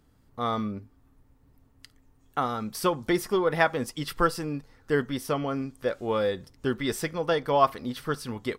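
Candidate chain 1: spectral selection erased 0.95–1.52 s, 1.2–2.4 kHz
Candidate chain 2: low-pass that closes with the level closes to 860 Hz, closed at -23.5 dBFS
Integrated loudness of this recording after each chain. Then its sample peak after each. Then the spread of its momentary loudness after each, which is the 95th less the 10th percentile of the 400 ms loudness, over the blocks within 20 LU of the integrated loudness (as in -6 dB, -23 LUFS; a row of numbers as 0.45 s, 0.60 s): -28.0 LUFS, -30.0 LUFS; -7.0 dBFS, -11.0 dBFS; 10 LU, 9 LU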